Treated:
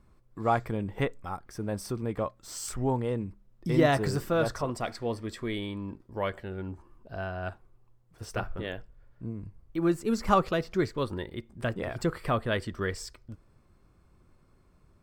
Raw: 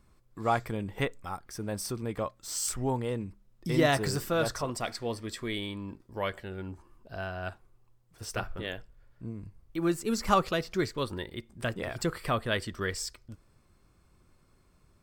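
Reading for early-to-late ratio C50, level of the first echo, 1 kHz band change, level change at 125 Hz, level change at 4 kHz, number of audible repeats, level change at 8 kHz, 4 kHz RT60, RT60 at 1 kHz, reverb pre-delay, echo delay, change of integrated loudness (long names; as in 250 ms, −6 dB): no reverb audible, no echo audible, +1.0 dB, +2.5 dB, −4.0 dB, no echo audible, −6.0 dB, no reverb audible, no reverb audible, no reverb audible, no echo audible, +1.0 dB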